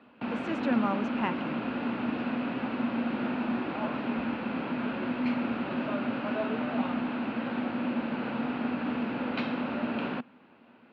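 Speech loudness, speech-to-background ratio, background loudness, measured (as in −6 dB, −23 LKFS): −32.0 LKFS, 0.0 dB, −32.0 LKFS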